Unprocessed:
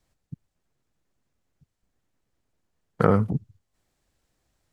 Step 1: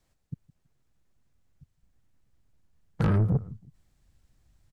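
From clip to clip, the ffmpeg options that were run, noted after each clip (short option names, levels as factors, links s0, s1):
-filter_complex "[0:a]asubboost=boost=4.5:cutoff=200,asplit=2[s0][s1];[s1]adelay=163,lowpass=f=2000:p=1,volume=0.0708,asplit=2[s2][s3];[s3]adelay=163,lowpass=f=2000:p=1,volume=0.29[s4];[s0][s2][s4]amix=inputs=3:normalize=0,asoftclip=type=tanh:threshold=0.106"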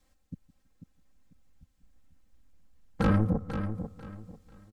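-af "aecho=1:1:3.8:0.92,aecho=1:1:493|986|1479:0.355|0.0958|0.0259"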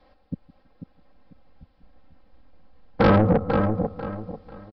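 -af "equalizer=f=650:t=o:w=2.1:g=13,aresample=11025,asoftclip=type=tanh:threshold=0.119,aresample=44100,volume=2.37"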